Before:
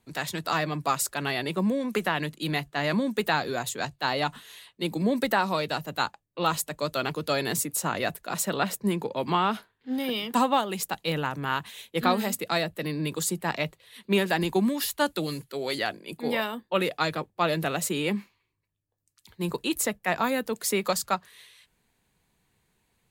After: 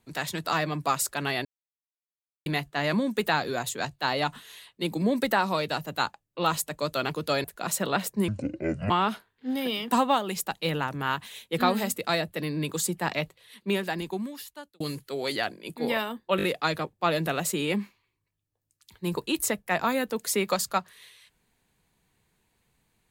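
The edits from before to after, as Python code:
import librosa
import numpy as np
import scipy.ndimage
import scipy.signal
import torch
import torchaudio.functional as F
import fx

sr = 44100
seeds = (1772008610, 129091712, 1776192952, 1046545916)

y = fx.edit(x, sr, fx.silence(start_s=1.45, length_s=1.01),
    fx.cut(start_s=7.44, length_s=0.67),
    fx.speed_span(start_s=8.95, length_s=0.38, speed=0.61),
    fx.fade_out_span(start_s=13.6, length_s=1.63),
    fx.stutter(start_s=16.8, slice_s=0.02, count=4), tone=tone)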